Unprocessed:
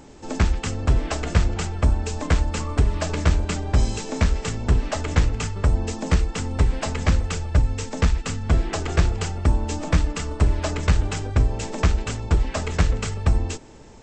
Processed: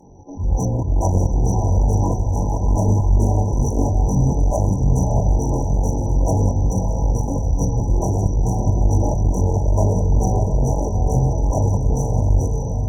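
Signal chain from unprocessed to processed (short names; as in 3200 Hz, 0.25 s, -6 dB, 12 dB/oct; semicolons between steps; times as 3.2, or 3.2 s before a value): inharmonic rescaling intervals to 89%; de-hum 95.02 Hz, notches 7; AGC gain up to 16 dB; in parallel at -1 dB: limiter -10 dBFS, peak gain reduction 9 dB; on the sum: auto swell 0.24 s; chorus voices 6, 0.37 Hz, delay 24 ms, depth 1.2 ms; diffused feedback echo 0.652 s, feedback 45%, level -5 dB; one-sided clip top -17 dBFS, bottom -5 dBFS; FFT band-reject 940–5300 Hz; speed mistake 44.1 kHz file played as 48 kHz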